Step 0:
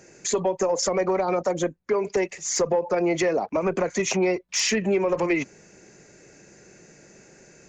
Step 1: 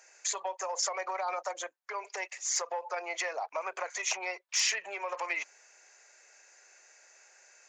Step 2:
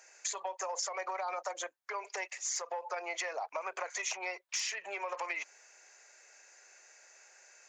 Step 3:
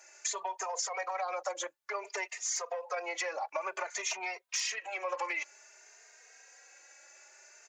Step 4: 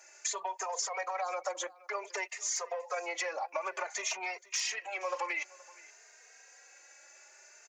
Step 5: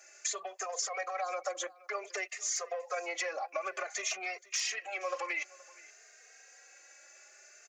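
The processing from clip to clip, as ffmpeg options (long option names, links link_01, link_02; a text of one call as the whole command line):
ffmpeg -i in.wav -af "highpass=frequency=740:width=0.5412,highpass=frequency=740:width=1.3066,volume=-4dB" out.wav
ffmpeg -i in.wav -af "acompressor=threshold=-33dB:ratio=6" out.wav
ffmpeg -i in.wav -filter_complex "[0:a]asplit=2[link_01][link_02];[link_02]adelay=3,afreqshift=0.55[link_03];[link_01][link_03]amix=inputs=2:normalize=1,volume=5dB" out.wav
ffmpeg -i in.wav -af "aecho=1:1:474:0.0794" out.wav
ffmpeg -i in.wav -af "asuperstop=centerf=930:order=4:qfactor=4.5" out.wav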